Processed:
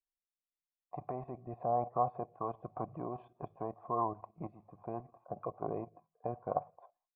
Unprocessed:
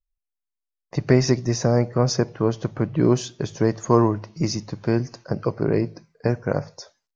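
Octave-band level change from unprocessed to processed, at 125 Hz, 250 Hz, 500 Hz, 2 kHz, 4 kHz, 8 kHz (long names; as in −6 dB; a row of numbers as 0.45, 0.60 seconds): −24.5 dB, −23.0 dB, −16.5 dB, below −30 dB, below −40 dB, can't be measured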